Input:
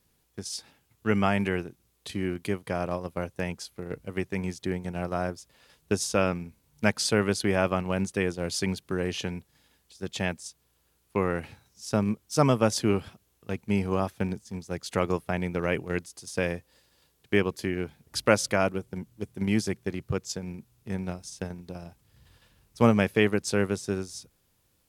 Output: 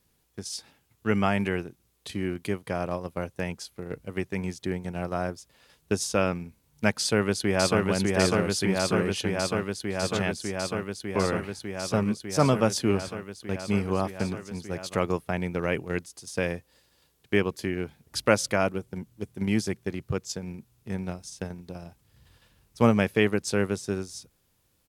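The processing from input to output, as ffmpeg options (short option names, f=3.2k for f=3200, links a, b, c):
-filter_complex "[0:a]asplit=2[a][b];[b]afade=t=in:st=6.99:d=0.01,afade=t=out:st=7.83:d=0.01,aecho=0:1:600|1200|1800|2400|3000|3600|4200|4800|5400|6000|6600|7200:0.841395|0.715186|0.607908|0.516722|0.439214|0.373331|0.317332|0.269732|0.229272|0.194881|0.165649|0.140802[c];[a][c]amix=inputs=2:normalize=0"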